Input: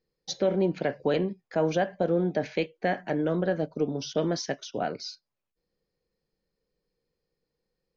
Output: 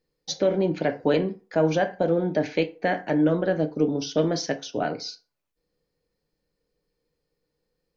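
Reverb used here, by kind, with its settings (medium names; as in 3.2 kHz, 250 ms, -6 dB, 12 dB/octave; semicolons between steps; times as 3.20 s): FDN reverb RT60 0.36 s, low-frequency decay 0.85×, high-frequency decay 0.65×, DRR 7.5 dB; trim +3 dB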